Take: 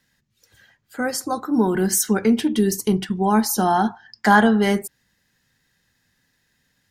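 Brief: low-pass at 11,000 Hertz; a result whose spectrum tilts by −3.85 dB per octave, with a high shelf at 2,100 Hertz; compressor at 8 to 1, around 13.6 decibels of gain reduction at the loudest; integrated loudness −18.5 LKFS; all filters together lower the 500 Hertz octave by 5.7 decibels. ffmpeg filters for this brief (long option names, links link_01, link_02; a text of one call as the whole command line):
ffmpeg -i in.wav -af "lowpass=11000,equalizer=frequency=500:width_type=o:gain=-8.5,highshelf=frequency=2100:gain=7,acompressor=threshold=-24dB:ratio=8,volume=9.5dB" out.wav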